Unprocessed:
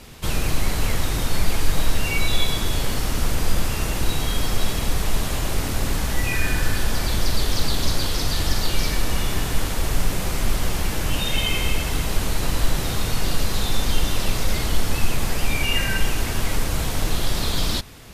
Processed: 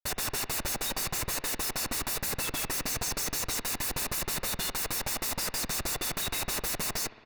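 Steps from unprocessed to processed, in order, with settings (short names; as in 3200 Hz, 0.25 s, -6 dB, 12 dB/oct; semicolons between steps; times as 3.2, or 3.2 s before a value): differentiator; plain phase-vocoder stretch 0.54×; tone controls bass -9 dB, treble +4 dB; comb 1.5 ms, depth 77%; grains 0.203 s, grains 4.7/s, pitch spread up and down by 0 st; Schmitt trigger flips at -40.5 dBFS; speed mistake 33 rpm record played at 45 rpm; notch 3200 Hz, Q 6.8; spring tank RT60 2 s, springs 56 ms, chirp 60 ms, DRR 14 dB; gain +5.5 dB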